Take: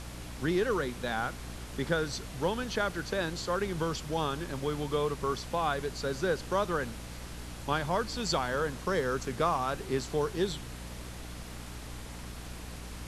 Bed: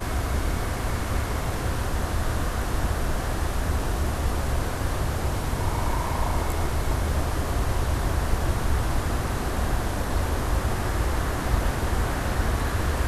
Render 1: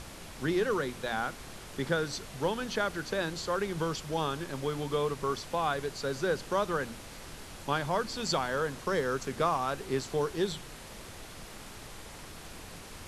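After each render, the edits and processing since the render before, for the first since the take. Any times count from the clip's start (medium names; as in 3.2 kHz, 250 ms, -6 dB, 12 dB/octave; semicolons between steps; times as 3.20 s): hum notches 60/120/180/240/300 Hz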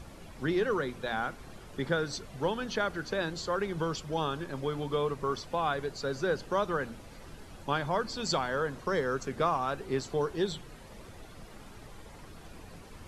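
noise reduction 10 dB, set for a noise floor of -47 dBFS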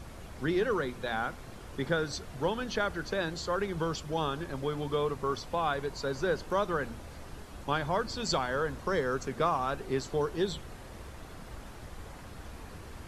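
add bed -23 dB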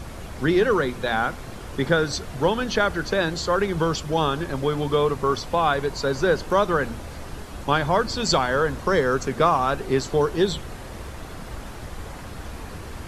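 trim +9.5 dB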